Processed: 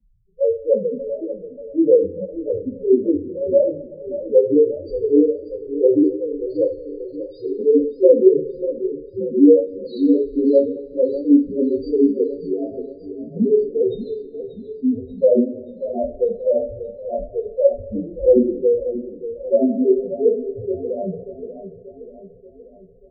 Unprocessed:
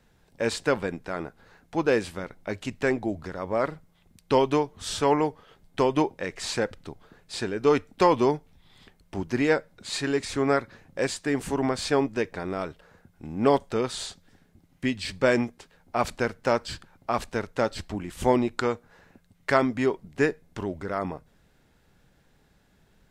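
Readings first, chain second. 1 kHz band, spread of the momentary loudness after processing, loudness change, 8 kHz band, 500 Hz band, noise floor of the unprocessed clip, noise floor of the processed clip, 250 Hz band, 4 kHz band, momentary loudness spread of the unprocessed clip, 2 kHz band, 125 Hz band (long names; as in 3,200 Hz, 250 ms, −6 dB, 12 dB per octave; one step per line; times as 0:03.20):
below −10 dB, 15 LU, +8.0 dB, below −40 dB, +10.0 dB, −63 dBFS, −44 dBFS, +9.5 dB, below −15 dB, 12 LU, below −40 dB, −4.5 dB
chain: low shelf with overshoot 740 Hz +10 dB, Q 1.5
spectral peaks only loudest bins 1
coupled-rooms reverb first 0.3 s, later 2 s, from −22 dB, DRR −8.5 dB
feedback echo with a swinging delay time 584 ms, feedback 54%, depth 63 cents, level −12.5 dB
level −5 dB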